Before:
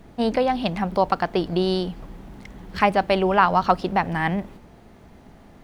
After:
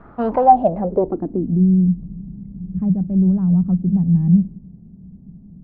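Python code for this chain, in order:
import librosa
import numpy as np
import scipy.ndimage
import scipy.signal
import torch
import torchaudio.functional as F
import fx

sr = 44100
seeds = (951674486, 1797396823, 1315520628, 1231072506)

p1 = 10.0 ** (-19.5 / 20.0) * (np.abs((x / 10.0 ** (-19.5 / 20.0) + 3.0) % 4.0 - 2.0) - 1.0)
p2 = x + (p1 * librosa.db_to_amplitude(-7.5))
p3 = fx.filter_sweep_lowpass(p2, sr, from_hz=1300.0, to_hz=180.0, start_s=0.13, end_s=1.66, q=5.4)
y = p3 * librosa.db_to_amplitude(-1.5)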